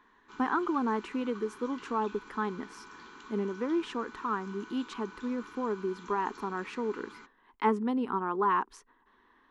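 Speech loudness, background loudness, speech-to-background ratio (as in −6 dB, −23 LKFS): −33.0 LKFS, −49.5 LKFS, 16.5 dB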